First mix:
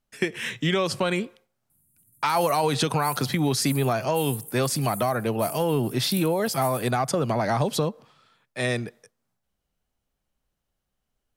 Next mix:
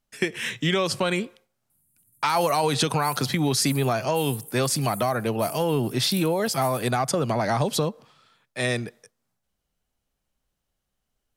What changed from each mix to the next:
background -4.0 dB; master: add peaking EQ 7.6 kHz +3 dB 2.8 oct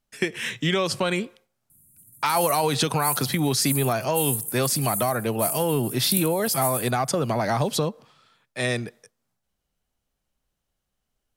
background +11.0 dB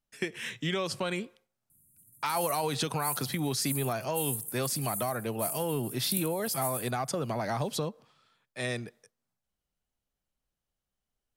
speech -8.0 dB; background -7.5 dB

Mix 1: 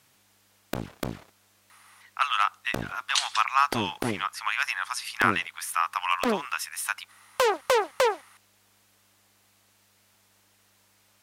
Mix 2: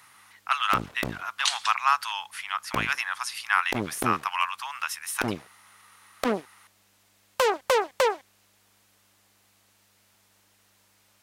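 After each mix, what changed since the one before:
speech: entry -1.70 s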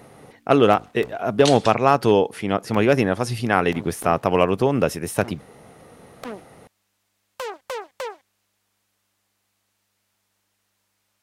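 speech: remove steep high-pass 990 Hz 48 dB/octave; background -8.5 dB

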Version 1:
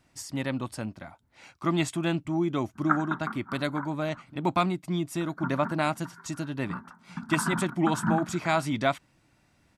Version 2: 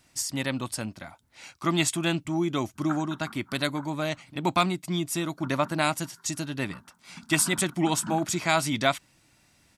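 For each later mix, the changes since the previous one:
speech: add treble shelf 2.7 kHz +11.5 dB; background -10.0 dB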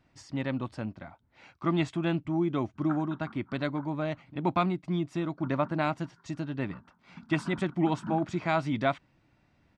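master: add tape spacing loss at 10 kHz 35 dB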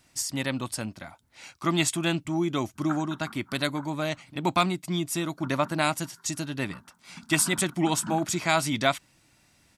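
master: remove tape spacing loss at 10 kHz 35 dB

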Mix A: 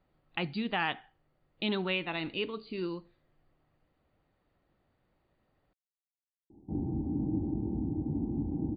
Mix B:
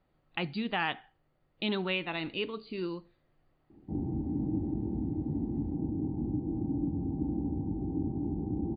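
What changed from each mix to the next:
background: entry -2.80 s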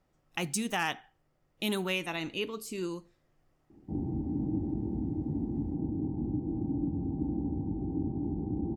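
master: remove brick-wall FIR low-pass 4.8 kHz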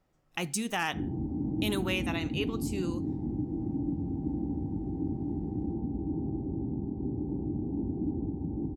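background: entry -2.95 s

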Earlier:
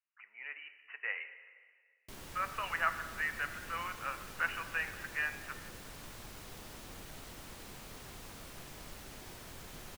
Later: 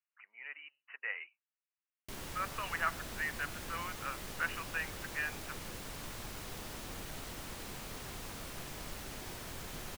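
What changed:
background +4.5 dB; reverb: off

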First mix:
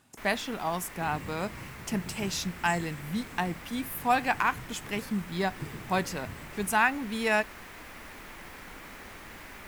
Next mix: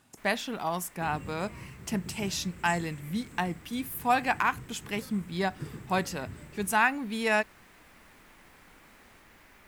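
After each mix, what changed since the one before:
first sound -11.0 dB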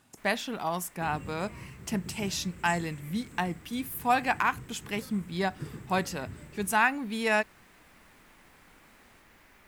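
first sound: send -8.0 dB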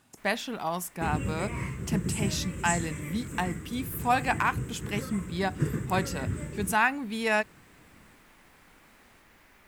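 second sound +11.5 dB

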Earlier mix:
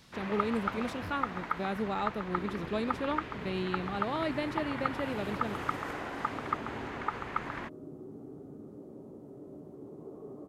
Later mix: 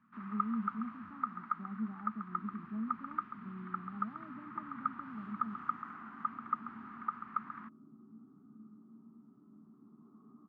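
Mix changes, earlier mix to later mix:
speech: add steep low-pass 780 Hz; master: add two resonant band-passes 520 Hz, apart 2.5 oct

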